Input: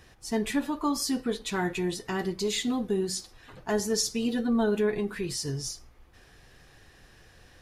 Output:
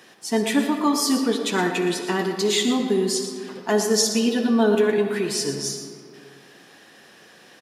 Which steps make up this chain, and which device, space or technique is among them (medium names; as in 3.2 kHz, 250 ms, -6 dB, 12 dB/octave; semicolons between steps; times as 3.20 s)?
PA in a hall (high-pass 190 Hz 24 dB/octave; peaking EQ 3.2 kHz +3.5 dB 0.2 oct; delay 117 ms -12 dB; reverberation RT60 2.3 s, pre-delay 52 ms, DRR 7 dB); trim +7 dB